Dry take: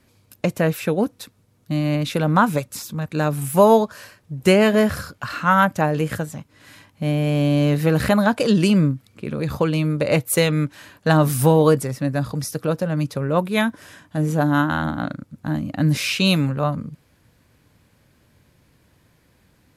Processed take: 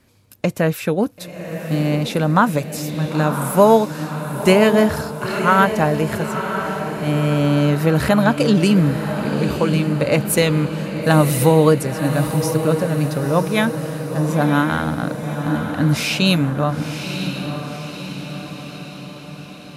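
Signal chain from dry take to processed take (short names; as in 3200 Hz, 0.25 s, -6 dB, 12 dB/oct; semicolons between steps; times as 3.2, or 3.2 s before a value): diffused feedback echo 0.998 s, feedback 57%, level -8 dB; gain +1.5 dB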